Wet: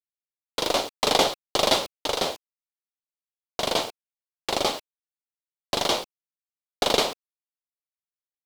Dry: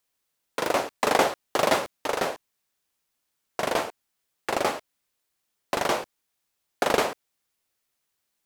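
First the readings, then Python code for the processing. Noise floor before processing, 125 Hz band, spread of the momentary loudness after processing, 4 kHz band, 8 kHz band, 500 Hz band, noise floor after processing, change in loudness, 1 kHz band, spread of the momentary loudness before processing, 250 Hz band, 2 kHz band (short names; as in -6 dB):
-79 dBFS, +1.5 dB, 14 LU, +9.0 dB, +4.0 dB, 0.0 dB, under -85 dBFS, +1.5 dB, -1.0 dB, 14 LU, 0.0 dB, -2.5 dB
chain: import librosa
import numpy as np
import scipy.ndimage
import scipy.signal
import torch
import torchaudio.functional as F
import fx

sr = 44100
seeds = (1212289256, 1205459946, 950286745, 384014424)

y = fx.peak_eq(x, sr, hz=1700.0, db=-10.5, octaves=0.77)
y = fx.cheby_harmonics(y, sr, harmonics=(8,), levels_db=(-27,), full_scale_db=-7.0)
y = fx.peak_eq(y, sr, hz=3800.0, db=11.5, octaves=1.3)
y = np.where(np.abs(y) >= 10.0 ** (-39.0 / 20.0), y, 0.0)
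y = fx.notch(y, sr, hz=2600.0, q=16.0)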